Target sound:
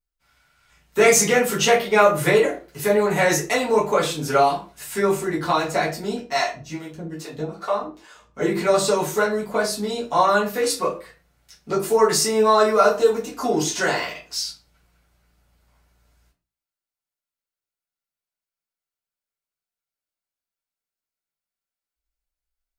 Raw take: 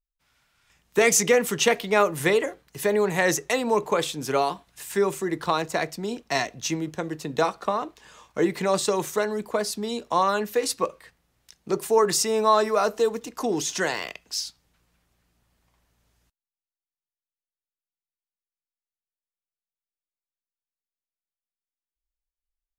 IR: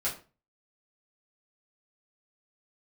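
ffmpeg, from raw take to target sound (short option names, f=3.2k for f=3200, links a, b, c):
-filter_complex "[0:a]asettb=1/sr,asplit=3[a][b][c];[a]atrim=end=6.204[d];[b]atrim=start=6.2:end=8.41,asetpts=PTS-STARTPTS,afade=t=in:d=0.004:c=qsin,afade=t=out:st=2.206:d=0.004:c=qsin,acrossover=split=400[e][f];[e]aeval=exprs='val(0)*(1-1/2+1/2*cos(2*PI*2.4*n/s))':c=same[g];[f]aeval=exprs='val(0)*(1-1/2-1/2*cos(2*PI*2.4*n/s))':c=same[h];[g][h]amix=inputs=2:normalize=0[i];[c]atrim=start=8.406[j];[d][i]acrossfade=d=0.004:c1=hsin:c2=qsin[k];[k][j]acrossfade=d=0.004:c1=qsin:c2=hsin[l];[1:a]atrim=start_sample=2205[m];[l][m]afir=irnorm=-1:irlink=0,volume=-1dB"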